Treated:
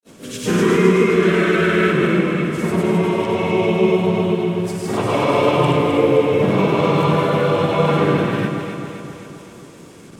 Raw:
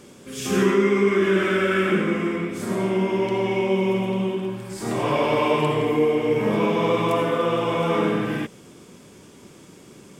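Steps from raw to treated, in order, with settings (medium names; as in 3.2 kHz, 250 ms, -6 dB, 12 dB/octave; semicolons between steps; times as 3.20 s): dynamic bell 160 Hz, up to +6 dB, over -44 dBFS, Q 6; granulator, pitch spread up and down by 0 st; frequency shift -15 Hz; harmony voices +3 st -5 dB; echo whose repeats swap between lows and highs 131 ms, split 1.6 kHz, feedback 76%, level -4 dB; trim +3 dB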